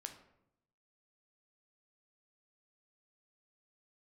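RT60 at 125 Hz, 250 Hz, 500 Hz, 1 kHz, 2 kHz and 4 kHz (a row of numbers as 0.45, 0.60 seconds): 1.1, 1.0, 0.85, 0.75, 0.60, 0.45 seconds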